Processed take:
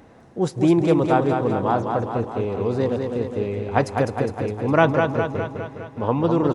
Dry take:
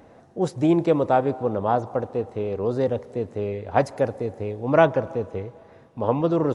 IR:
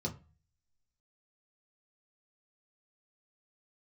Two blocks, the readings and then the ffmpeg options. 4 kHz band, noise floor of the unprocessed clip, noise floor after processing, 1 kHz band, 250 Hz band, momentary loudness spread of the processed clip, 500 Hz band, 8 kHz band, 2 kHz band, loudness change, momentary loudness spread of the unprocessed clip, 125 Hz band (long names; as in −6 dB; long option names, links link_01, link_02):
+4.5 dB, −51 dBFS, −49 dBFS, +2.0 dB, +3.5 dB, 9 LU, +0.5 dB, can't be measured, +4.5 dB, +2.0 dB, 11 LU, +4.5 dB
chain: -filter_complex "[0:a]equalizer=frequency=600:width_type=o:width=0.78:gain=-6,asplit=2[link_01][link_02];[link_02]aecho=0:1:205|410|615|820|1025|1230|1435|1640:0.562|0.337|0.202|0.121|0.0729|0.0437|0.0262|0.0157[link_03];[link_01][link_03]amix=inputs=2:normalize=0,volume=3dB"